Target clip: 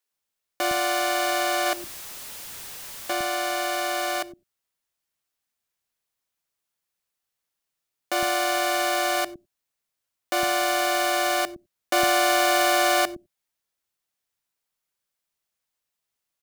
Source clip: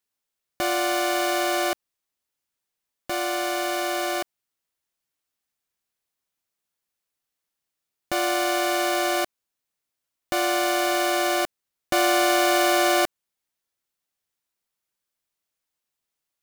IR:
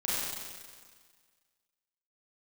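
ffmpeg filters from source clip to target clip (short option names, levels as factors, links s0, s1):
-filter_complex "[0:a]asettb=1/sr,asplit=3[s0][s1][s2];[s0]atrim=end=1.664[s3];[s1]atrim=start=1.66:end=3.13,asetpts=PTS-STARTPTS,afade=t=in:d=0.004:c=qsin,afade=t=out:st=1.466:d=0.004:c=qsin,aeval=exprs='val(0)+0.5*0.0237*sgn(val(0))':c=same[s4];[s2]atrim=start=3.126[s5];[s3][s4]acrossfade=d=0.004:c1=hsin:c2=qsin[s6];[s6][s5]acrossfade=d=0.004:c1=qsin:c2=hsin,acrossover=split=280[s7][s8];[s7]adelay=110[s9];[s9][s8]amix=inputs=2:normalize=0,asplit=2[s10][s11];[1:a]atrim=start_sample=2205,atrim=end_sample=4410,asetrate=43659,aresample=44100[s12];[s11][s12]afir=irnorm=-1:irlink=0,volume=0.0668[s13];[s10][s13]amix=inputs=2:normalize=0"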